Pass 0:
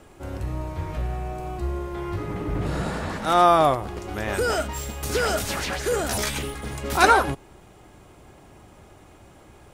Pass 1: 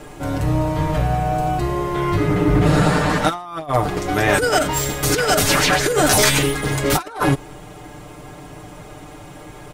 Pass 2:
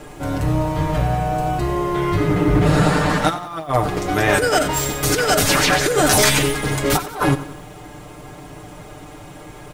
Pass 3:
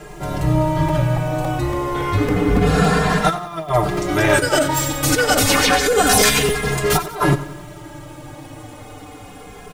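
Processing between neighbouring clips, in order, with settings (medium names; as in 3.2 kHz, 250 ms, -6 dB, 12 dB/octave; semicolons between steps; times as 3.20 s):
comb 6.7 ms, depth 83%; compressor with a negative ratio -23 dBFS, ratio -0.5; trim +7 dB
bit-crushed delay 91 ms, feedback 55%, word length 7-bit, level -14.5 dB
crackling interface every 0.28 s, samples 256, repeat, from 0.88 s; endless flanger 2.5 ms -0.29 Hz; trim +4 dB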